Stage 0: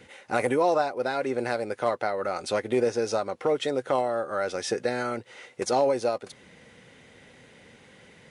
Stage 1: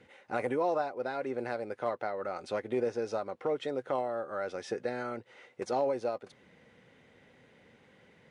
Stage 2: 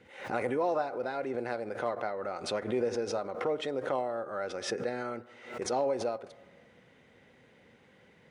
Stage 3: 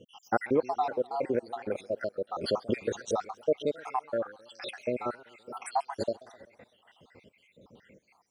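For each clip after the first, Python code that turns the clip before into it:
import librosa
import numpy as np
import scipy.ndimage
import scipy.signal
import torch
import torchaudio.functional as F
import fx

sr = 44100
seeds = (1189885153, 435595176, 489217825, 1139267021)

y1 = fx.lowpass(x, sr, hz=2300.0, slope=6)
y1 = fx.low_shelf(y1, sr, hz=67.0, db=-5.5)
y1 = y1 * librosa.db_to_amplitude(-6.5)
y2 = fx.rev_fdn(y1, sr, rt60_s=1.6, lf_ratio=0.95, hf_ratio=0.4, size_ms=86.0, drr_db=17.0)
y2 = fx.pre_swell(y2, sr, db_per_s=100.0)
y3 = fx.spec_dropout(y2, sr, seeds[0], share_pct=76)
y3 = fx.echo_warbled(y3, sr, ms=129, feedback_pct=58, rate_hz=2.8, cents=197, wet_db=-21.5)
y3 = y3 * librosa.db_to_amplitude(7.0)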